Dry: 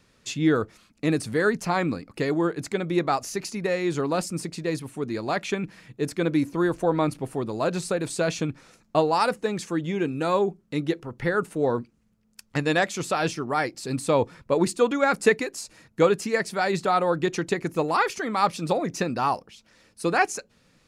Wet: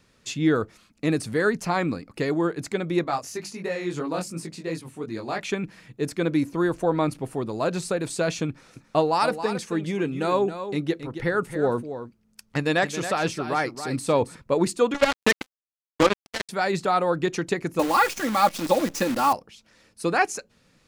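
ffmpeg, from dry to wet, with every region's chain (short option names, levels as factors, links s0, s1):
-filter_complex "[0:a]asettb=1/sr,asplit=3[s0][s1][s2];[s0]atrim=end=3.044[s3];[s1]atrim=start=3.04:end=5.41,asetpts=PTS-STARTPTS,afade=t=in:d=0.004:c=qsin,afade=t=out:st=2.366:d=0.004:c=qsin,highpass=45,bandreject=f=50:t=h:w=6,bandreject=f=100:t=h:w=6,bandreject=f=150:t=h:w=6,bandreject=f=200:t=h:w=6,flanger=delay=18:depth=4:speed=2.9[s4];[s2]atrim=start=5.406[s5];[s3][s4]acrossfade=d=0.004:c1=hsin:c2=qsin[s6];[s6][s5]acrossfade=d=0.004:c1=qsin:c2=hsin,asettb=1/sr,asplit=3[s7][s8][s9];[s7]atrim=end=8.494[s10];[s8]atrim=start=8.49:end=14.36,asetpts=PTS-STARTPTS,afade=t=in:d=0.004:c=qsin,afade=t=out:st=5.866:d=0.004:c=qsin,bandreject=f=7200:w=19,aecho=1:1:272:0.299,atrim=end_sample=258867[s11];[s9]atrim=start=14.356[s12];[s10][s11]acrossfade=d=0.004:c1=hsin:c2=qsin[s13];[s13][s12]acrossfade=d=0.004:c1=qsin:c2=hsin,asettb=1/sr,asplit=3[s14][s15][s16];[s14]atrim=end=14.944[s17];[s15]atrim=start=14.94:end=16.49,asetpts=PTS-STARTPTS,afade=t=in:d=0.004:c=qsin,afade=t=out:st=1.546:d=0.004:c=qsin,aecho=1:1:3.3:0.58,atrim=end_sample=68355,acrusher=bits=2:mix=0:aa=0.5[s18];[s16]atrim=start=16.486[s19];[s17][s18]acrossfade=d=0.004:c1=hsin:c2=qsin[s20];[s20][s19]acrossfade=d=0.004:c1=qsin:c2=hsin,asettb=1/sr,asplit=3[s21][s22][s23];[s21]atrim=end=17.794[s24];[s22]atrim=start=17.79:end=19.33,asetpts=PTS-STARTPTS,afade=t=in:d=0.004:c=qsin,afade=t=out:st=1.536:d=0.004:c=qsin,aecho=1:1:3.6:0.83,atrim=end_sample=67914,acrusher=bits=6:dc=4:mix=0:aa=0.000001[s25];[s23]atrim=start=19.326[s26];[s24][s25]acrossfade=d=0.004:c1=hsin:c2=qsin[s27];[s27][s26]acrossfade=d=0.004:c1=qsin:c2=hsin"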